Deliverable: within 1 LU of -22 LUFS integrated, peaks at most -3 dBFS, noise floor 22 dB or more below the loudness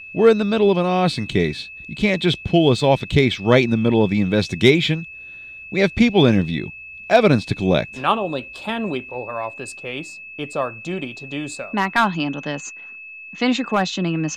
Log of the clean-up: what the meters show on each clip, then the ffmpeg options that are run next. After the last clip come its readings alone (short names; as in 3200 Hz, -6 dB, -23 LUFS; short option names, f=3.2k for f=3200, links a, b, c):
steady tone 2600 Hz; tone level -35 dBFS; loudness -19.5 LUFS; peak -2.0 dBFS; loudness target -22.0 LUFS
-> -af "bandreject=f=2.6k:w=30"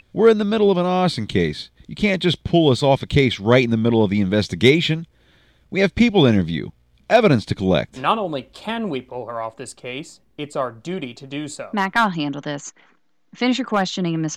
steady tone none; loudness -19.5 LUFS; peak -2.0 dBFS; loudness target -22.0 LUFS
-> -af "volume=-2.5dB"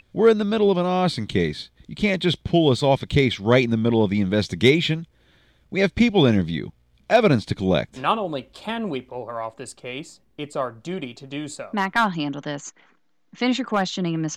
loudness -22.0 LUFS; peak -4.5 dBFS; noise floor -61 dBFS